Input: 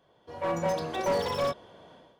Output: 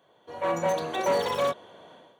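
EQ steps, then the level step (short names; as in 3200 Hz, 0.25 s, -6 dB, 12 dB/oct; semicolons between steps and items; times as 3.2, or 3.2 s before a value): HPF 75 Hz; Butterworth band-stop 5100 Hz, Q 5.6; low shelf 180 Hz -10 dB; +3.5 dB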